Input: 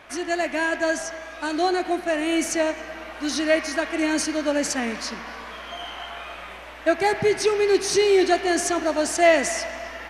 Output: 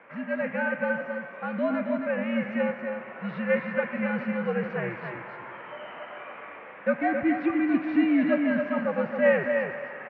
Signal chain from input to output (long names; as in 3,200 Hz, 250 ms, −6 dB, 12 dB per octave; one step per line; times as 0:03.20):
single-tap delay 271 ms −6 dB
single-sideband voice off tune −99 Hz 270–2,500 Hz
level −4.5 dB